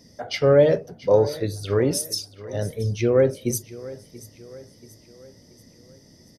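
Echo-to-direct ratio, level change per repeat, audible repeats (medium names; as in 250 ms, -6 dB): -17.0 dB, -6.5 dB, 3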